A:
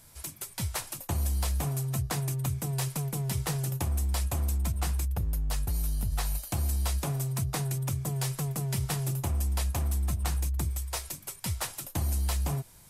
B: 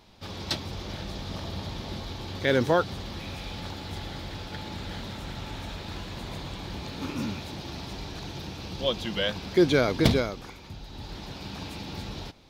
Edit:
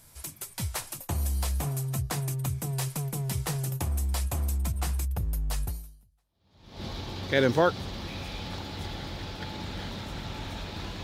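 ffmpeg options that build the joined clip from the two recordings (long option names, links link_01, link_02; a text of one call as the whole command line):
ffmpeg -i cue0.wav -i cue1.wav -filter_complex "[0:a]apad=whole_dur=11.03,atrim=end=11.03,atrim=end=6.85,asetpts=PTS-STARTPTS[link_01];[1:a]atrim=start=0.79:end=6.15,asetpts=PTS-STARTPTS[link_02];[link_01][link_02]acrossfade=duration=1.18:curve1=exp:curve2=exp" out.wav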